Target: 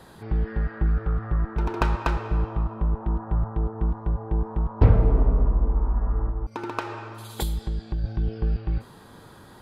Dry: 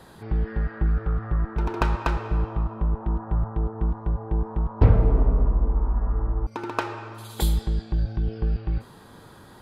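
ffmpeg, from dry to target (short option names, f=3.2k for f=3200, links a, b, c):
-filter_complex "[0:a]asettb=1/sr,asplit=3[a][b][c];[a]atrim=end=6.294[d];[b]atrim=start=6.29:end=8.04,asetpts=PTS-STARTPTS,afade=t=in:d=0.004:c=qsin,afade=t=out:st=1.746:d=0.004:c=qsin,acompressor=threshold=-24dB:ratio=4[e];[c]atrim=start=8.036[f];[d][e]acrossfade=d=0.004:c1=hsin:c2=qsin[g];[g][f]acrossfade=d=0.004:c1=qsin:c2=hsin"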